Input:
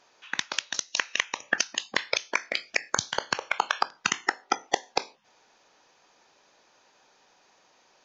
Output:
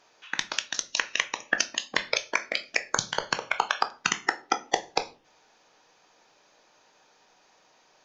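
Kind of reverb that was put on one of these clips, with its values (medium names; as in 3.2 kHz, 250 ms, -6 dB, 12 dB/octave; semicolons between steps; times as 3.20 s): simulated room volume 180 m³, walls furnished, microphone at 0.5 m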